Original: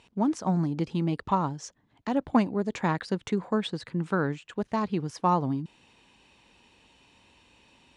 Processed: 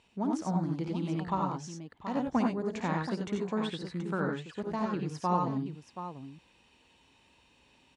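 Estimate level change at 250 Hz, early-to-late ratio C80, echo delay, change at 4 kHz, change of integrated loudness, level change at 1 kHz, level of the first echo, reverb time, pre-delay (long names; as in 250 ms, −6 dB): −4.0 dB, no reverb audible, 56 ms, −4.0 dB, −4.5 dB, −4.0 dB, −9.5 dB, no reverb audible, no reverb audible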